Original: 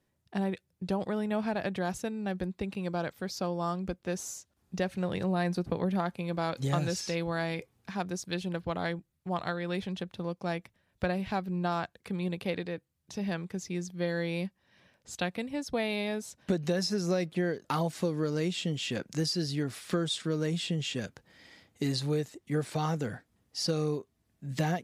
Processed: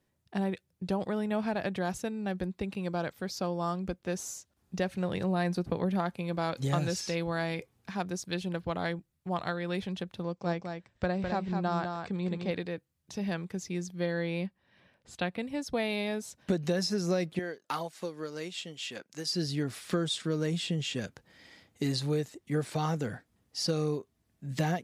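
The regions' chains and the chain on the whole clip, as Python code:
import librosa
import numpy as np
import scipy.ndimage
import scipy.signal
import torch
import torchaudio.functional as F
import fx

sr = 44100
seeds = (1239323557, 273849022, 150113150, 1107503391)

y = fx.chain(x, sr, fx.brickwall_lowpass(high_hz=8500.0),
    fx.dynamic_eq(hz=2700.0, q=1.6, threshold_db=-53.0, ratio=4.0, max_db=-6),
    fx.echo_single(ms=206, db=-5.5), at=(10.23, 12.51))
y = fx.chain(y, sr, fx.lowpass(hz=9100.0, slope=12),
    fx.peak_eq(hz=6400.0, db=-8.5, octaves=0.9), at=(14.06, 15.43))
y = fx.chain(y, sr, fx.highpass(hz=580.0, slope=6),
    fx.upward_expand(threshold_db=-49.0, expansion=1.5), at=(17.39, 19.33))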